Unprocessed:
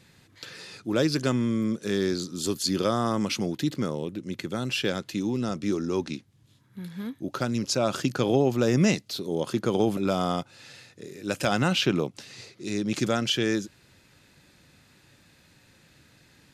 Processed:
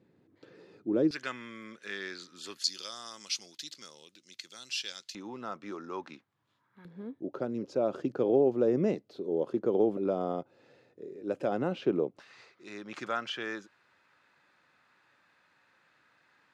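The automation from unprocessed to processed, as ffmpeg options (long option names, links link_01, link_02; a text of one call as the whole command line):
ffmpeg -i in.wav -af "asetnsamples=nb_out_samples=441:pad=0,asendcmd='1.11 bandpass f 1900;2.64 bandpass f 5200;5.15 bandpass f 1100;6.85 bandpass f 440;12.19 bandpass f 1200',bandpass=frequency=350:width_type=q:width=1.6:csg=0" out.wav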